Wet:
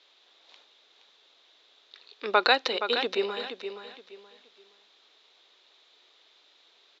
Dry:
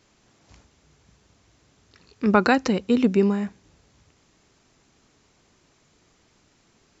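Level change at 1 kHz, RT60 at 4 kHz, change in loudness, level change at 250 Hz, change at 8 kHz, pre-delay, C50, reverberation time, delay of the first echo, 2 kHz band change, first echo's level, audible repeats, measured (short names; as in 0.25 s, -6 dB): -2.0 dB, none, -5.5 dB, -20.0 dB, n/a, none, none, none, 0.471 s, 0.0 dB, -9.0 dB, 3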